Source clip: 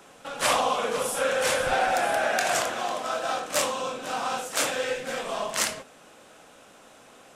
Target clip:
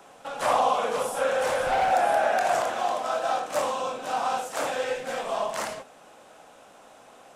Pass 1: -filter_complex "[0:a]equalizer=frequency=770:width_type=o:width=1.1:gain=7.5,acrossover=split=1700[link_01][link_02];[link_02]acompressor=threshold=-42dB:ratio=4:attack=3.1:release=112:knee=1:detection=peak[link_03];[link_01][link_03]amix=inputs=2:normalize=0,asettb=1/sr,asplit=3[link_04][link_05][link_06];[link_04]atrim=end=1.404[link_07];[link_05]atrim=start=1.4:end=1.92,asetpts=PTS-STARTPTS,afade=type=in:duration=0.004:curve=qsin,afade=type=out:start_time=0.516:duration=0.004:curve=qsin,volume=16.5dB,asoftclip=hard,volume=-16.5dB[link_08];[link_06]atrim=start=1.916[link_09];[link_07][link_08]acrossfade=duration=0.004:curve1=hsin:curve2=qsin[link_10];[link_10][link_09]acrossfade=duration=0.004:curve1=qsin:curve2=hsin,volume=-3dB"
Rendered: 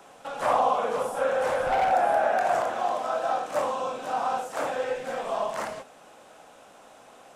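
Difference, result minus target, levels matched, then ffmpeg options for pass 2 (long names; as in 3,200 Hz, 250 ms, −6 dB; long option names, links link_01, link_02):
downward compressor: peak gain reduction +7.5 dB
-filter_complex "[0:a]equalizer=frequency=770:width_type=o:width=1.1:gain=7.5,acrossover=split=1700[link_01][link_02];[link_02]acompressor=threshold=-32dB:ratio=4:attack=3.1:release=112:knee=1:detection=peak[link_03];[link_01][link_03]amix=inputs=2:normalize=0,asettb=1/sr,asplit=3[link_04][link_05][link_06];[link_04]atrim=end=1.404[link_07];[link_05]atrim=start=1.4:end=1.92,asetpts=PTS-STARTPTS,afade=type=in:duration=0.004:curve=qsin,afade=type=out:start_time=0.516:duration=0.004:curve=qsin,volume=16.5dB,asoftclip=hard,volume=-16.5dB[link_08];[link_06]atrim=start=1.916[link_09];[link_07][link_08]acrossfade=duration=0.004:curve1=hsin:curve2=qsin[link_10];[link_10][link_09]acrossfade=duration=0.004:curve1=qsin:curve2=hsin,volume=-3dB"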